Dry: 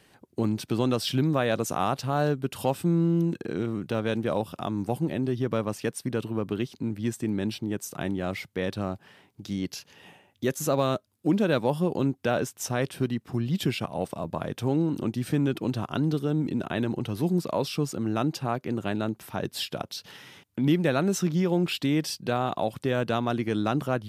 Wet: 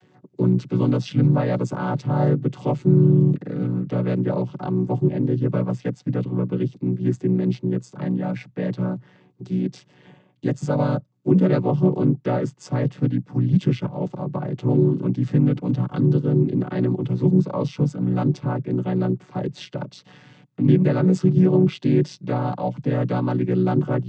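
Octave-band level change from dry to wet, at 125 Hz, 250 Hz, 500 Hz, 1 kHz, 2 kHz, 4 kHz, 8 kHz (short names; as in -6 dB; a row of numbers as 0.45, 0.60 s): +10.0 dB, +6.5 dB, +4.0 dB, 0.0 dB, -3.0 dB, n/a, under -10 dB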